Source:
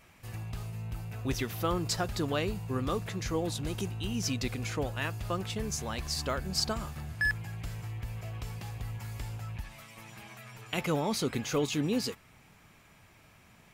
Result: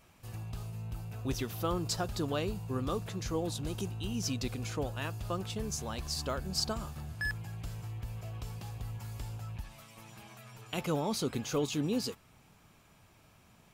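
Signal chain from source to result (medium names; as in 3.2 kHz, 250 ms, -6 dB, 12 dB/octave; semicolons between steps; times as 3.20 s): peaking EQ 2 kHz -7 dB 0.65 oct; trim -2 dB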